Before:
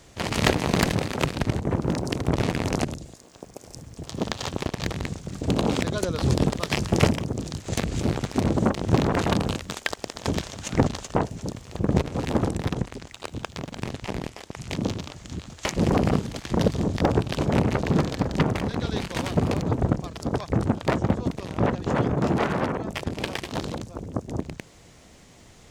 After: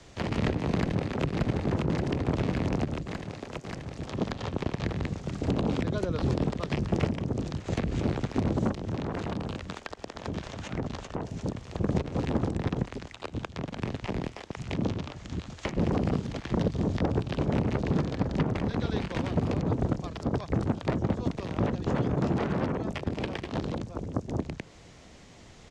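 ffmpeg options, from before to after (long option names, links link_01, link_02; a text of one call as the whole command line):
ffmpeg -i in.wav -filter_complex "[0:a]asplit=2[link_01][link_02];[link_02]afade=type=in:start_time=0.74:duration=0.01,afade=type=out:start_time=1.27:duration=0.01,aecho=0:1:580|1160|1740|2320|2900|3480|4060|4640|5220|5800|6380|6960:0.501187|0.37589|0.281918|0.211438|0.158579|0.118934|0.0892006|0.0669004|0.0501753|0.0376315|0.0282236|0.0211677[link_03];[link_01][link_03]amix=inputs=2:normalize=0,asettb=1/sr,asplit=3[link_04][link_05][link_06];[link_04]atrim=end=8.744[link_07];[link_05]atrim=start=8.74:end=11.44,asetpts=PTS-STARTPTS,afade=type=in:duration=0.004:curve=qsin,afade=type=out:start_time=2.696:duration=0.004:curve=qsin,acompressor=threshold=-29dB:ratio=4:attack=3.2:release=140:knee=1:detection=peak[link_08];[link_06]atrim=start=11.436[link_09];[link_07][link_08]acrossfade=duration=0.004:curve1=hsin:curve2=qsin[link_10];[link_10][link_09]acrossfade=duration=0.004:curve1=qsin:curve2=hsin,acrossover=split=180|490|2900[link_11][link_12][link_13][link_14];[link_11]acompressor=threshold=-28dB:ratio=4[link_15];[link_12]acompressor=threshold=-29dB:ratio=4[link_16];[link_13]acompressor=threshold=-36dB:ratio=4[link_17];[link_14]acompressor=threshold=-48dB:ratio=4[link_18];[link_15][link_16][link_17][link_18]amix=inputs=4:normalize=0,lowpass=6300" out.wav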